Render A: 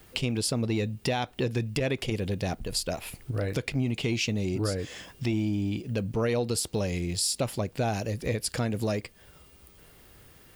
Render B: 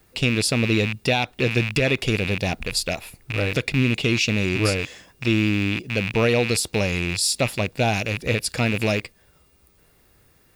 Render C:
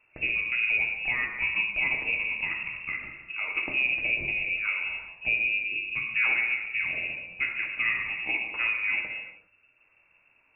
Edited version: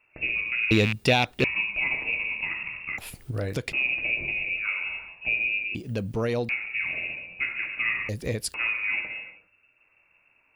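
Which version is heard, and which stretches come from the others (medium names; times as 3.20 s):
C
0.71–1.44 s: from B
2.98–3.73 s: from A
5.75–6.49 s: from A
8.09–8.54 s: from A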